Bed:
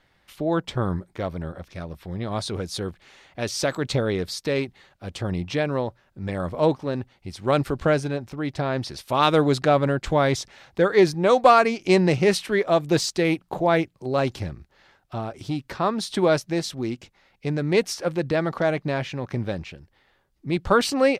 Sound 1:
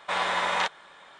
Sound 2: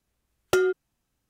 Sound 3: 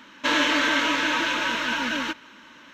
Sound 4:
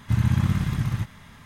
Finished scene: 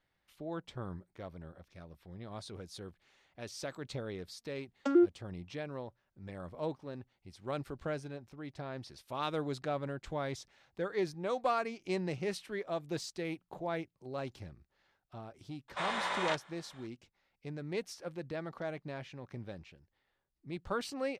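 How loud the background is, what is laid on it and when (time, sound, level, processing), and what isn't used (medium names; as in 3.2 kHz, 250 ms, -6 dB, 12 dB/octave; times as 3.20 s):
bed -17 dB
4.32 s: add 2 -2.5 dB + vocoder on a broken chord minor triad, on A#3, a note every 125 ms
15.68 s: add 1 -8.5 dB
not used: 3, 4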